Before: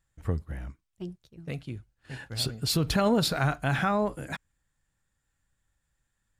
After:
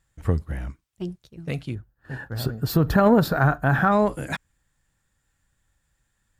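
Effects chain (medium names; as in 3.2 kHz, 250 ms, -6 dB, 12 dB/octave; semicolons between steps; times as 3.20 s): time-frequency box 1.75–3.92 s, 1.9–12 kHz -13 dB; Chebyshev shaper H 3 -26 dB, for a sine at -12.5 dBFS; trim +8 dB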